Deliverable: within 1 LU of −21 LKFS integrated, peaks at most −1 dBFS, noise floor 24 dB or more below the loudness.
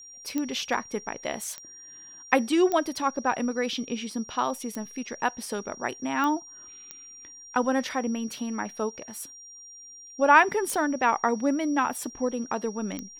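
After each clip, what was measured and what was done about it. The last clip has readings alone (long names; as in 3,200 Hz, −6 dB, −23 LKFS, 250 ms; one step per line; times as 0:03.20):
number of clicks 8; interfering tone 5,700 Hz; level of the tone −44 dBFS; integrated loudness −27.0 LKFS; sample peak −4.5 dBFS; target loudness −21.0 LKFS
→ click removal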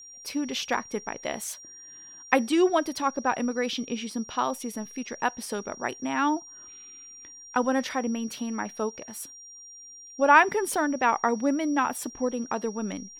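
number of clicks 0; interfering tone 5,700 Hz; level of the tone −44 dBFS
→ notch filter 5,700 Hz, Q 30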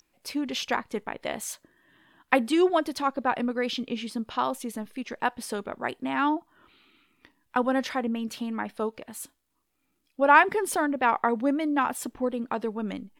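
interfering tone none found; integrated loudness −27.5 LKFS; sample peak −4.5 dBFS; target loudness −21.0 LKFS
→ level +6.5 dB
brickwall limiter −1 dBFS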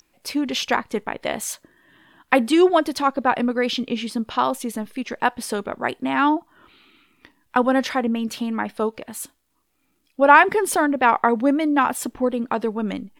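integrated loudness −21.0 LKFS; sample peak −1.0 dBFS; background noise floor −68 dBFS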